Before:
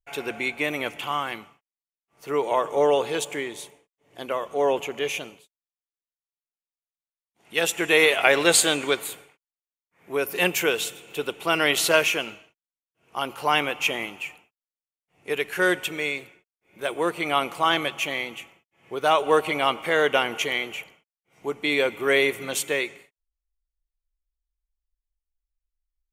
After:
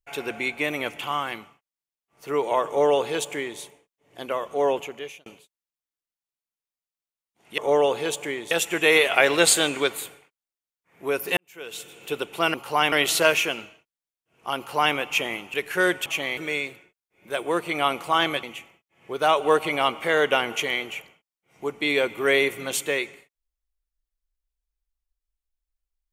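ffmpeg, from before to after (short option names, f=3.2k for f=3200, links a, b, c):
-filter_complex "[0:a]asplit=11[a][b][c][d][e][f][g][h][i][j][k];[a]atrim=end=5.26,asetpts=PTS-STARTPTS,afade=t=out:st=4.66:d=0.6[l];[b]atrim=start=5.26:end=7.582,asetpts=PTS-STARTPTS,afade=t=in:d=0.004:c=hsin[m];[c]atrim=start=2.668:end=3.602[n];[d]atrim=start=7.578:end=10.44,asetpts=PTS-STARTPTS,afade=t=out:st=2.858:d=0.004:c=hsin[o];[e]atrim=start=10.44:end=11.612,asetpts=PTS-STARTPTS,afade=t=in:d=0.62:c=qua[p];[f]atrim=start=13.258:end=13.642[q];[g]atrim=start=11.608:end=14.232[r];[h]atrim=start=15.358:end=15.882[s];[i]atrim=start=17.938:end=18.252[t];[j]atrim=start=15.878:end=17.942[u];[k]atrim=start=18.248[v];[l][m]concat=n=2:v=0:a=1[w];[w][n]acrossfade=d=0.004:c1=hsin:c2=hsin[x];[o][p]concat=n=2:v=0:a=1[y];[x][y]acrossfade=d=0.004:c1=hsin:c2=hsin[z];[z][q]acrossfade=d=0.004:c1=hsin:c2=hsin[aa];[aa][r]acrossfade=d=0.004:c1=hsin:c2=hsin[ab];[ab][s]acrossfade=d=0.004:c1=hsin:c2=hsin[ac];[ac][t]acrossfade=d=0.004:c1=hsin:c2=hsin[ad];[ad][u]acrossfade=d=0.004:c1=hsin:c2=hsin[ae];[ae][v]acrossfade=d=0.004:c1=hsin:c2=hsin"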